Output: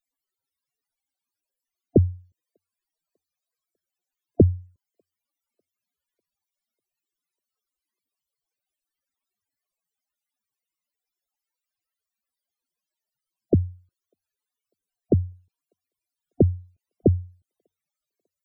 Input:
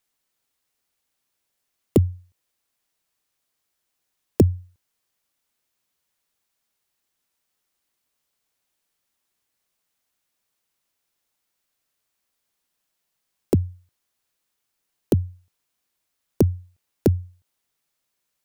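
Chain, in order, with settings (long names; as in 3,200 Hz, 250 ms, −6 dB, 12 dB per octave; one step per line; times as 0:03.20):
spectral peaks only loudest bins 32
delay with a high-pass on its return 597 ms, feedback 47%, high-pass 2,100 Hz, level −21 dB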